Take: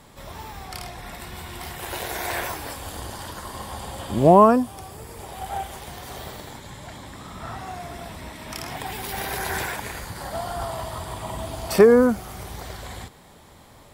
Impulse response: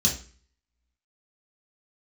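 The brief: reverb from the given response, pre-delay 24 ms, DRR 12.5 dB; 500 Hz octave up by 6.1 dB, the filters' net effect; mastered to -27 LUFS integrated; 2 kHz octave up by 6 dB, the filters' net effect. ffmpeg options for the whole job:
-filter_complex "[0:a]equalizer=f=500:t=o:g=7,equalizer=f=2000:t=o:g=7,asplit=2[s0][s1];[1:a]atrim=start_sample=2205,adelay=24[s2];[s1][s2]afir=irnorm=-1:irlink=0,volume=0.0841[s3];[s0][s3]amix=inputs=2:normalize=0,volume=0.335"

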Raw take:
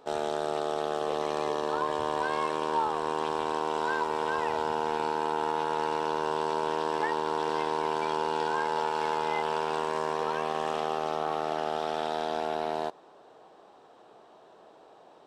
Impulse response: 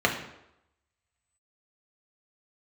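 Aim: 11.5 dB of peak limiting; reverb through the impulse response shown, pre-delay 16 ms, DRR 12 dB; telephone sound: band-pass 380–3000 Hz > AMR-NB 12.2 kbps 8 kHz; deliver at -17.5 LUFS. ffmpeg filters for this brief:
-filter_complex "[0:a]alimiter=level_in=1.41:limit=0.0631:level=0:latency=1,volume=0.708,asplit=2[s0][s1];[1:a]atrim=start_sample=2205,adelay=16[s2];[s1][s2]afir=irnorm=-1:irlink=0,volume=0.0447[s3];[s0][s3]amix=inputs=2:normalize=0,highpass=380,lowpass=3000,volume=11.2" -ar 8000 -c:a libopencore_amrnb -b:a 12200

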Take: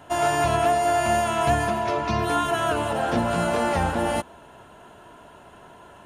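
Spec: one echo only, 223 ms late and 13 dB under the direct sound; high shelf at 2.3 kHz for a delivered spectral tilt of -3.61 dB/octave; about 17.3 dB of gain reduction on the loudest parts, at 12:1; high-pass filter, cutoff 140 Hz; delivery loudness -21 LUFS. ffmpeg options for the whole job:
-af "highpass=140,highshelf=f=2300:g=4,acompressor=threshold=0.0178:ratio=12,aecho=1:1:223:0.224,volume=7.94"

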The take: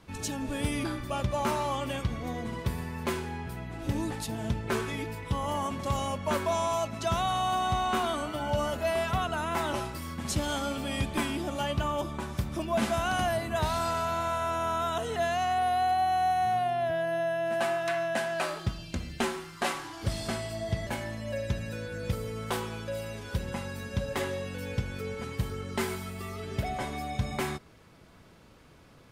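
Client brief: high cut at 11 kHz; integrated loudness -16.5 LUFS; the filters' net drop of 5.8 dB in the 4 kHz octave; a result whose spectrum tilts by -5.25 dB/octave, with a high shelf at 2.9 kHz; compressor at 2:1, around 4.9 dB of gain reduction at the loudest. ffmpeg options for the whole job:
-af "lowpass=11000,highshelf=f=2900:g=-5.5,equalizer=f=4000:t=o:g=-3.5,acompressor=threshold=0.0224:ratio=2,volume=8.91"

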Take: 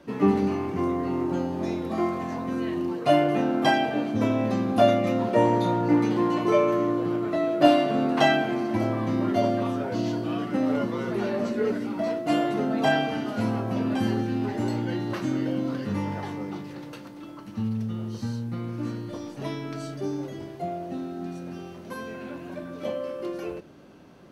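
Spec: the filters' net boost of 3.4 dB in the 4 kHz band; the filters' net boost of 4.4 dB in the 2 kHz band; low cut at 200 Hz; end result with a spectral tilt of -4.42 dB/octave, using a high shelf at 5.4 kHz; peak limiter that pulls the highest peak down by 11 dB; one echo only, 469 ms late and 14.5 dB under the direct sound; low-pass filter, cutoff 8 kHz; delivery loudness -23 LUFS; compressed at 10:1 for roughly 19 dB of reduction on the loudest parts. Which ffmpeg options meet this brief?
-af "highpass=200,lowpass=8000,equalizer=f=2000:t=o:g=5.5,equalizer=f=4000:t=o:g=4.5,highshelf=f=5400:g=-6,acompressor=threshold=0.0251:ratio=10,alimiter=level_in=2.51:limit=0.0631:level=0:latency=1,volume=0.398,aecho=1:1:469:0.188,volume=7.08"

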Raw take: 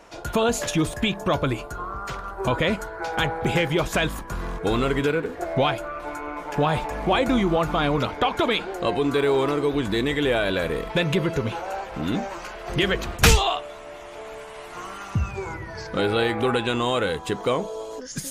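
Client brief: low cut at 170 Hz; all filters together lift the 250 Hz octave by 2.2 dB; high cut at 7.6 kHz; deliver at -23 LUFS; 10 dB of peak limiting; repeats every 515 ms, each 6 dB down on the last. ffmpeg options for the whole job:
-af "highpass=170,lowpass=7600,equalizer=f=250:t=o:g=4,alimiter=limit=0.2:level=0:latency=1,aecho=1:1:515|1030|1545|2060|2575|3090:0.501|0.251|0.125|0.0626|0.0313|0.0157,volume=1.26"

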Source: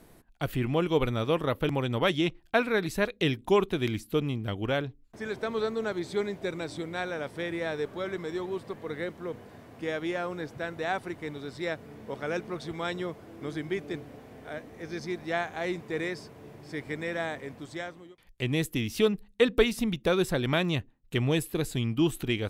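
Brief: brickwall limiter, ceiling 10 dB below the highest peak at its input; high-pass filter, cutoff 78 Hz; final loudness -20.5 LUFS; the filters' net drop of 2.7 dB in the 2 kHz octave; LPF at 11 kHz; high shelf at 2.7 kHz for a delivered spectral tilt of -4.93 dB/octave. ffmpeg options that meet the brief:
-af "highpass=78,lowpass=11000,equalizer=f=2000:t=o:g=-7,highshelf=f=2700:g=8,volume=4.22,alimiter=limit=0.422:level=0:latency=1"

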